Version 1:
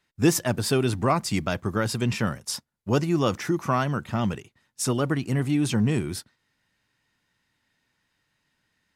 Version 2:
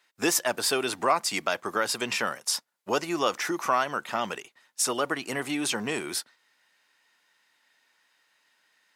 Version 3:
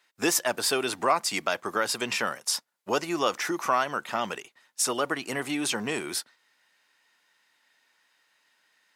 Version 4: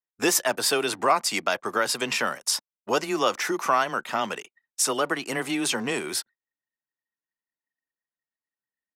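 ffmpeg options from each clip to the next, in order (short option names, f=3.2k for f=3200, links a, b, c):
-filter_complex "[0:a]highpass=560,asplit=2[a][b];[b]acompressor=threshold=-34dB:ratio=6,volume=3dB[c];[a][c]amix=inputs=2:normalize=0,volume=-1dB"
-af anull
-af "afreqshift=13,anlmdn=0.00398,volume=2.5dB"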